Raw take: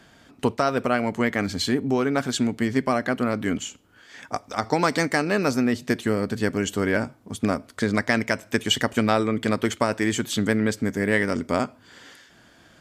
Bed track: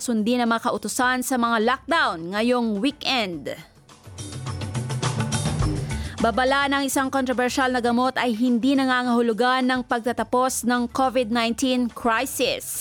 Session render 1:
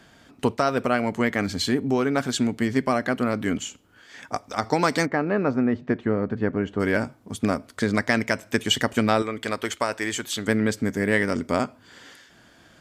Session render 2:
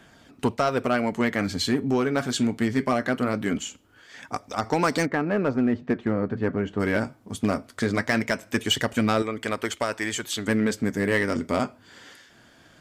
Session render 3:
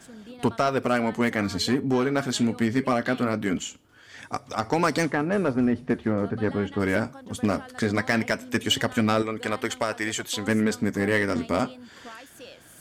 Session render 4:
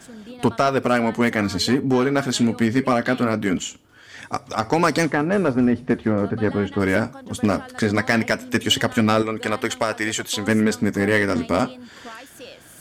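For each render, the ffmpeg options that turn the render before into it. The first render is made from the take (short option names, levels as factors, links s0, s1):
-filter_complex "[0:a]asplit=3[s0][s1][s2];[s0]afade=t=out:st=5.05:d=0.02[s3];[s1]lowpass=1500,afade=t=in:st=5.05:d=0.02,afade=t=out:st=6.79:d=0.02[s4];[s2]afade=t=in:st=6.79:d=0.02[s5];[s3][s4][s5]amix=inputs=3:normalize=0,asettb=1/sr,asplit=3[s6][s7][s8];[s6]atrim=end=9.224[s9];[s7]atrim=start=9.22:end=10.48,asetpts=PTS-STARTPTS,afade=t=in:d=0.004:c=qsin,afade=t=out:st=1.256:d=0.004:c=qsin,equalizer=f=160:w=0.56:g=-11.5[s10];[s8]atrim=start=10.476[s11];[s9][s10]acrossfade=d=0.004:c1=hsin:c2=qsin[s12];[s12][s11]acrossfade=d=0.004:c1=qsin:c2=hsin"
-filter_complex "[0:a]flanger=delay=0.1:depth=9.3:regen=-67:speed=0.21:shape=sinusoidal,asplit=2[s0][s1];[s1]aeval=exprs='0.106*(abs(mod(val(0)/0.106+3,4)-2)-1)':c=same,volume=0.531[s2];[s0][s2]amix=inputs=2:normalize=0"
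-filter_complex "[1:a]volume=0.075[s0];[0:a][s0]amix=inputs=2:normalize=0"
-af "volume=1.68"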